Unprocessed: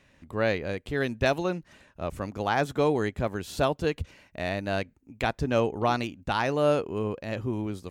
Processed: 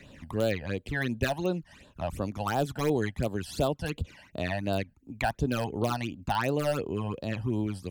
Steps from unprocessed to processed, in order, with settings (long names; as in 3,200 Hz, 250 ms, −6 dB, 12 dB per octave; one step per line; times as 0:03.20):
in parallel at −9.5 dB: wrap-around overflow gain 15 dB
on the sum: all-pass phaser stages 12, 2.8 Hz, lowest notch 370–2,100 Hz
multiband upward and downward compressor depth 40%
level −2 dB